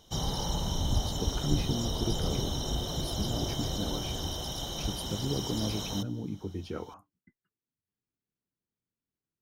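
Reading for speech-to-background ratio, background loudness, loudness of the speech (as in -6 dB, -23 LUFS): -3.5 dB, -33.5 LUFS, -37.0 LUFS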